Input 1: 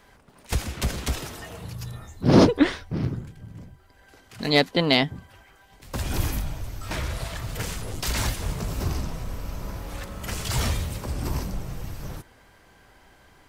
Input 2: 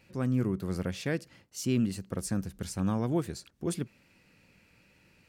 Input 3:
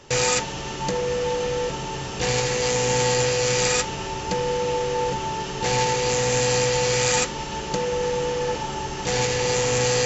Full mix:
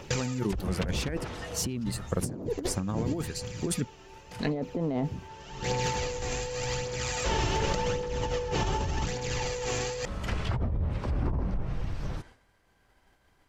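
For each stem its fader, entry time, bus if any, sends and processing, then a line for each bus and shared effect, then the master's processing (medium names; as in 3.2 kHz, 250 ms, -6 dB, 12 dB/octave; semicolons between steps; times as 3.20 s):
-4.5 dB, 0.00 s, no send, expander -45 dBFS; low-pass that closes with the level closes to 630 Hz, closed at -21.5 dBFS
+3.0 dB, 0.00 s, no send, reverb removal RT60 1.7 s
-3.5 dB, 0.00 s, no send, treble shelf 7 kHz -5 dB; phaser 0.87 Hz, delay 3 ms, feedback 48%; auto duck -23 dB, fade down 0.65 s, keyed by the second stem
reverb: none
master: bass shelf 68 Hz +4 dB; compressor with a negative ratio -30 dBFS, ratio -1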